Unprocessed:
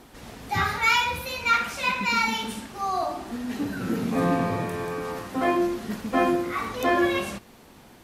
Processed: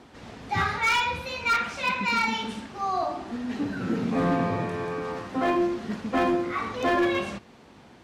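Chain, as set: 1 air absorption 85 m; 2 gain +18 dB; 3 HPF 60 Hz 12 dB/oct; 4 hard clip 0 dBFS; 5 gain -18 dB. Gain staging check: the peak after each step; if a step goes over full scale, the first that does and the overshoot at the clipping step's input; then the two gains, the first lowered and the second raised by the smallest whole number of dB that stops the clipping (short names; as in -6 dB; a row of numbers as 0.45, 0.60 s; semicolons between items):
-10.0, +8.0, +8.0, 0.0, -18.0 dBFS; step 2, 8.0 dB; step 2 +10 dB, step 5 -10 dB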